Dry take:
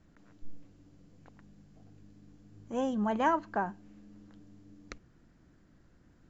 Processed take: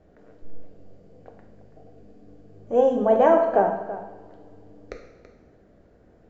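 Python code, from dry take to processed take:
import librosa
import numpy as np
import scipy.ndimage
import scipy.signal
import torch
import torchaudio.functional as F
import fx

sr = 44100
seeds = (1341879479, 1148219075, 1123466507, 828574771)

y = fx.lowpass(x, sr, hz=2600.0, slope=6)
y = fx.band_shelf(y, sr, hz=540.0, db=13.0, octaves=1.1)
y = y + 10.0 ** (-14.0 / 20.0) * np.pad(y, (int(331 * sr / 1000.0), 0))[:len(y)]
y = fx.rev_double_slope(y, sr, seeds[0], early_s=0.91, late_s=2.5, knee_db=-19, drr_db=2.5)
y = F.gain(torch.from_numpy(y), 3.0).numpy()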